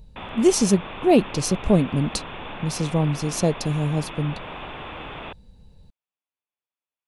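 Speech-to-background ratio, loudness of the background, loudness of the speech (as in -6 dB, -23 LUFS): 13.5 dB, -36.0 LUFS, -22.5 LUFS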